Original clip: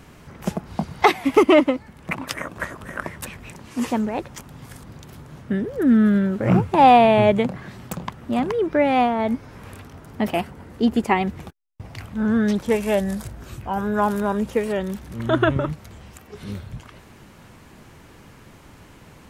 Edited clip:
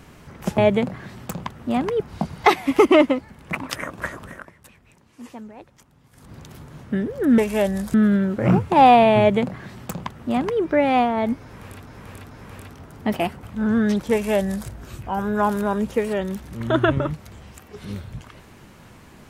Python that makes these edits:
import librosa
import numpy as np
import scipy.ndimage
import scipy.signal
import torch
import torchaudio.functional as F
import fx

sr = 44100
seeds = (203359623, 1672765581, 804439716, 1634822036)

y = fx.edit(x, sr, fx.fade_down_up(start_s=2.81, length_s=2.13, db=-15.5, fade_s=0.23),
    fx.duplicate(start_s=7.2, length_s=1.42, to_s=0.58),
    fx.repeat(start_s=9.45, length_s=0.44, count=3),
    fx.cut(start_s=10.57, length_s=1.45),
    fx.duplicate(start_s=12.71, length_s=0.56, to_s=5.96), tone=tone)